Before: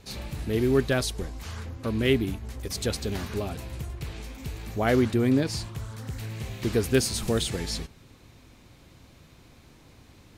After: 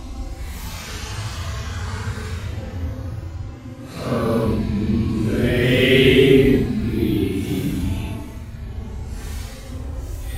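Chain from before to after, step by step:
automatic gain control gain up to 11.5 dB
extreme stretch with random phases 8×, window 0.05 s, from 0:01.34
level −1.5 dB

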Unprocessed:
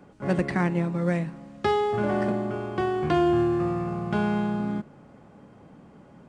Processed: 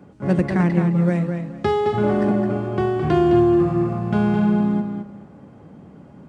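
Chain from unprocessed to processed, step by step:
high-pass filter 54 Hz
low-shelf EQ 400 Hz +8.5 dB
on a send: tape delay 214 ms, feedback 23%, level −4.5 dB, low-pass 5,400 Hz

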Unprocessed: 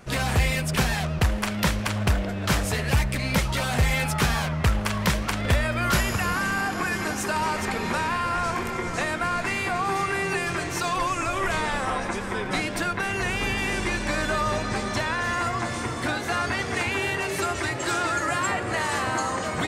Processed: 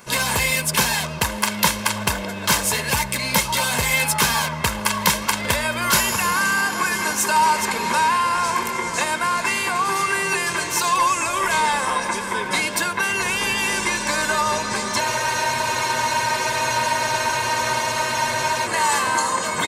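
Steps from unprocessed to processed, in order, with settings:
spectral tilt +3.5 dB per octave
comb filter 1.9 ms, depth 56%
hollow resonant body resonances 230/880 Hz, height 13 dB, ringing for 25 ms
frozen spectrum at 0:15.02, 3.63 s

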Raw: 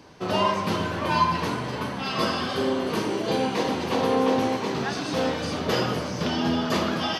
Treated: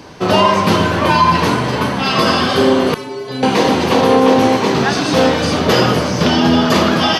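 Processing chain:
0:02.94–0:03.43: stiff-string resonator 130 Hz, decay 0.43 s, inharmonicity 0.008
boost into a limiter +14 dB
level −1 dB

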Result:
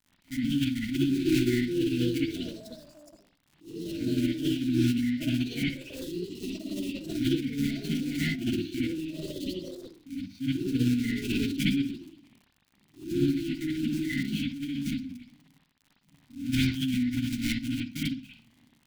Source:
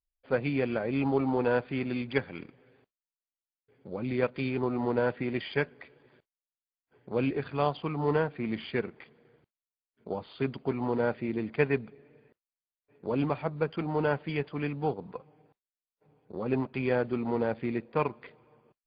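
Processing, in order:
one scale factor per block 3 bits
linear-phase brick-wall band-stop 290–1,400 Hz
delay with pitch and tempo change per echo 723 ms, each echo +5 semitones, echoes 3, each echo −6 dB
surface crackle 81 per second −42 dBFS
drawn EQ curve 270 Hz 0 dB, 450 Hz −16 dB, 910 Hz −7 dB
convolution reverb, pre-delay 57 ms, DRR −6 dB
formants moved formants +5 semitones

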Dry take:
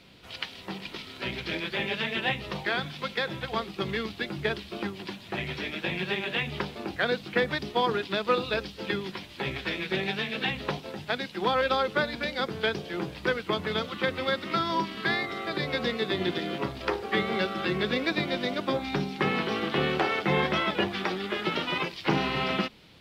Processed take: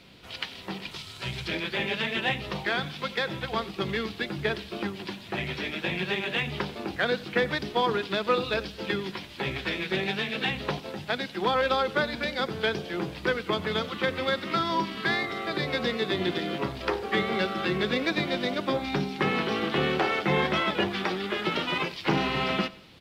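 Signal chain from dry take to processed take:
in parallel at −9 dB: soft clipping −26 dBFS, distortion −10 dB
0:00.91–0:01.48: on the sum: octave-band graphic EQ 125/250/500/2,000/8,000 Hz +8/−11/−5/−5/+8 dB
repeating echo 91 ms, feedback 41%, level −20.5 dB
level −1 dB

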